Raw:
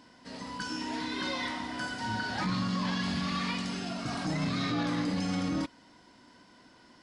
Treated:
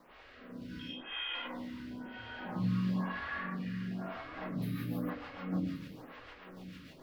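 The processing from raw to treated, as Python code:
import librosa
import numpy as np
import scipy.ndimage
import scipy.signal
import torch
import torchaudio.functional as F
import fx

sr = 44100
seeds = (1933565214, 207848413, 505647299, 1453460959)

p1 = fx.peak_eq(x, sr, hz=1700.0, db=13.5, octaves=0.64, at=(3.16, 3.92))
p2 = fx.quant_dither(p1, sr, seeds[0], bits=6, dither='triangular')
p3 = fx.air_absorb(p2, sr, metres=350.0)
p4 = fx.freq_invert(p3, sr, carrier_hz=3500, at=(0.79, 1.35))
p5 = fx.rev_plate(p4, sr, seeds[1], rt60_s=0.75, hf_ratio=0.5, predelay_ms=85, drr_db=-6.0)
p6 = fx.resample_bad(p5, sr, factor=3, down='none', up='hold', at=(4.62, 5.1))
p7 = fx.rotary_switch(p6, sr, hz=0.6, then_hz=6.7, switch_at_s=3.84)
p8 = p7 + fx.echo_single(p7, sr, ms=1128, db=-16.5, dry=0)
p9 = fx.stagger_phaser(p8, sr, hz=1.0)
y = p9 * librosa.db_to_amplitude(-8.0)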